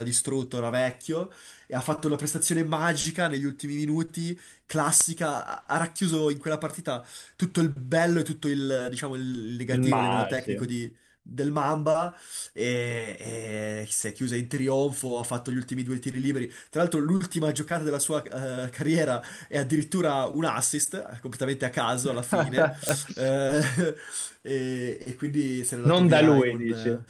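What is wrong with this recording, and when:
0:22.89: click −6 dBFS

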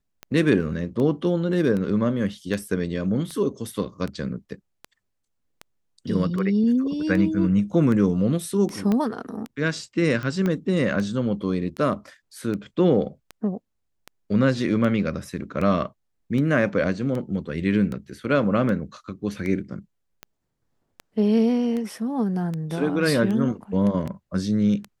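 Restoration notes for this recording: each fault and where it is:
scratch tick 78 rpm −19 dBFS
0:08.92: click −13 dBFS
0:10.46: click −14 dBFS

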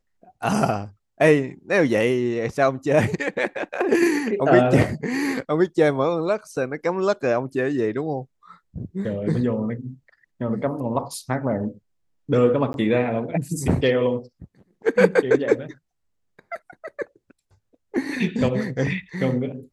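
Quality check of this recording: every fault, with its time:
0:12.73–0:12.74: drop-out 11 ms

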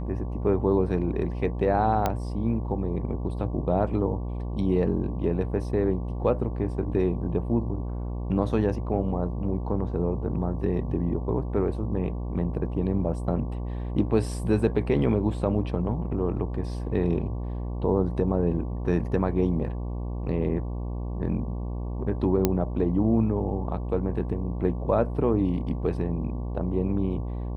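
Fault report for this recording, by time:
mains buzz 60 Hz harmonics 19 −31 dBFS
0:02.06: click −11 dBFS
0:22.45: click −7 dBFS

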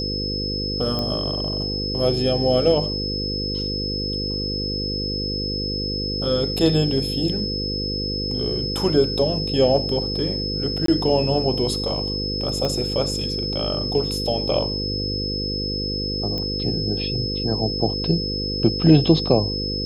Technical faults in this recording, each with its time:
mains buzz 50 Hz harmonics 10 −28 dBFS
whistle 5,200 Hz −26 dBFS
0:00.99: click −13 dBFS
0:10.86–0:10.88: drop-out 23 ms
0:12.65: click −13 dBFS
0:16.38: click −15 dBFS

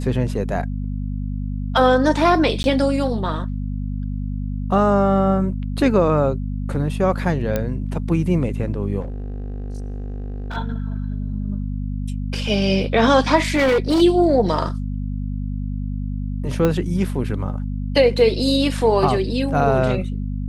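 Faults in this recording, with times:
mains hum 50 Hz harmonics 5 −25 dBFS
0:02.63–0:02.64: drop-out 11 ms
0:07.56: click −8 dBFS
0:09.00–0:10.57: clipping −25 dBFS
0:13.50–0:14.02: clipping −13.5 dBFS
0:16.65: click −7 dBFS

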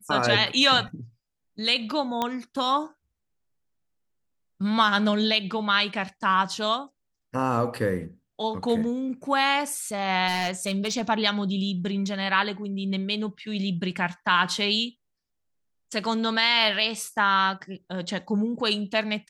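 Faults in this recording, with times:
0:02.22: click −12 dBFS
0:10.27–0:11.02: clipping −21 dBFS

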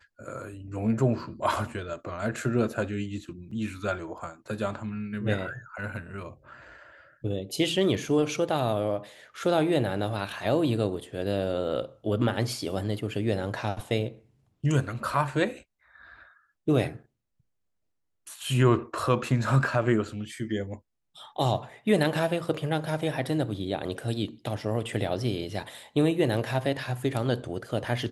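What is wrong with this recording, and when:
0:03.51: drop-out 4.3 ms

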